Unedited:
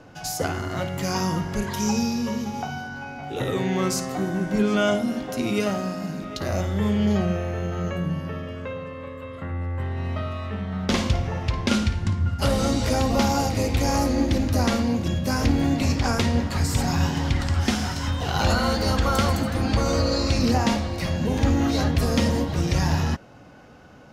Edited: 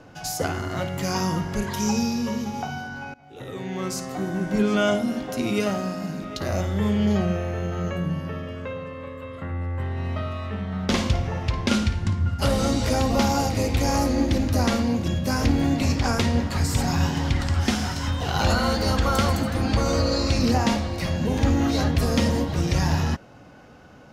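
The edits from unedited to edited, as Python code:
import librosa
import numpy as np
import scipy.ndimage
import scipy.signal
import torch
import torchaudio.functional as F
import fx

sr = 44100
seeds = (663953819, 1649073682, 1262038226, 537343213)

y = fx.edit(x, sr, fx.fade_in_from(start_s=3.14, length_s=1.41, floor_db=-20.5), tone=tone)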